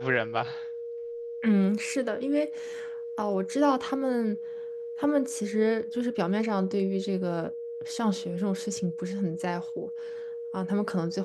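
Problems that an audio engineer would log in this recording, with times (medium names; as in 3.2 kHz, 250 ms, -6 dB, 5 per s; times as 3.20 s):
whine 470 Hz -34 dBFS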